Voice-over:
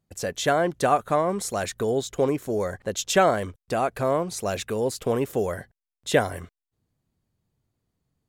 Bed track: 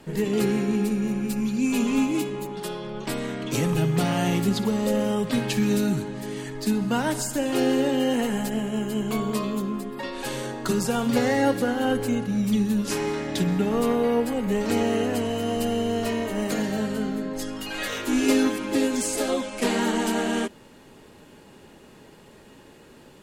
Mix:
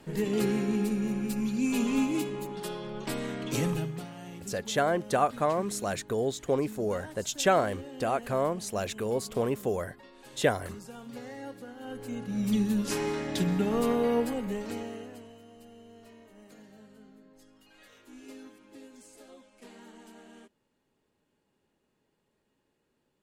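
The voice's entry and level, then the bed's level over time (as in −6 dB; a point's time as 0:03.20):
4.30 s, −4.5 dB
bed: 0:03.68 −4.5 dB
0:04.11 −20.5 dB
0:11.75 −20.5 dB
0:12.49 −4 dB
0:14.25 −4 dB
0:15.49 −27 dB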